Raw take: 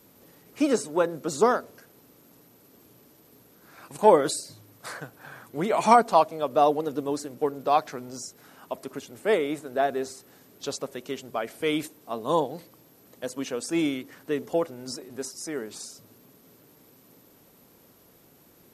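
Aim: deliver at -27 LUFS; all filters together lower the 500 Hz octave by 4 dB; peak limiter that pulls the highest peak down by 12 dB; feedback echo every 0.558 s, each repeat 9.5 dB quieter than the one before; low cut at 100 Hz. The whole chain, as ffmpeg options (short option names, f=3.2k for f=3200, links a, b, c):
-af "highpass=100,equalizer=f=500:t=o:g=-5,alimiter=limit=-17.5dB:level=0:latency=1,aecho=1:1:558|1116|1674|2232:0.335|0.111|0.0365|0.012,volume=5dB"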